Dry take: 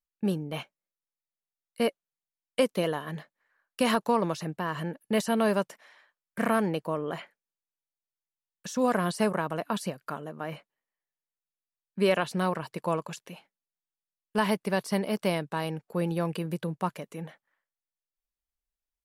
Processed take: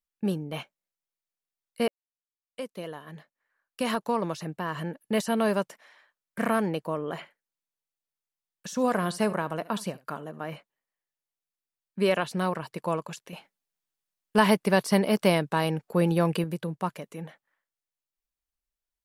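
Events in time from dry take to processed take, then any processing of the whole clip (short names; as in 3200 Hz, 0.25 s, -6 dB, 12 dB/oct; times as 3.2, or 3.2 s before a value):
1.88–4.8 fade in
7.08–10.49 echo 71 ms -19.5 dB
13.33–16.44 gain +5.5 dB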